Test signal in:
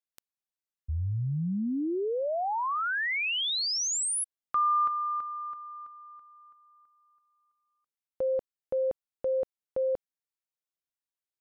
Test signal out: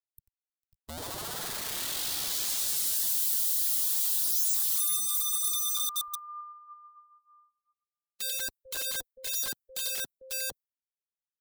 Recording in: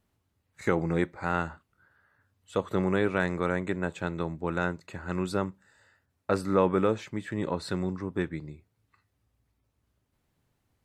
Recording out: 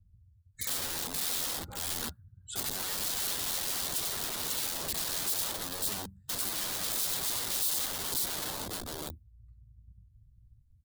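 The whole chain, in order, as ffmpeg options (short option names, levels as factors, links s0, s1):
-filter_complex "[0:a]acrossover=split=140|3600[s0][s1][s2];[s0]acontrast=59[s3];[s1]asubboost=boost=3:cutoff=200[s4];[s3][s4][s2]amix=inputs=3:normalize=0,aphaser=in_gain=1:out_gain=1:delay=4.2:decay=0.44:speed=0.51:type=sinusoidal,lowshelf=f=310:g=8.5,acompressor=threshold=0.0398:ratio=16:attack=1.4:release=25:knee=6:detection=rms,aecho=1:1:91|449|544|560:0.501|0.112|0.668|0.168,aeval=exprs='(mod(59.6*val(0)+1,2)-1)/59.6':c=same,aexciter=amount=4.1:drive=1.2:freq=3400,afftdn=nr=27:nf=-46"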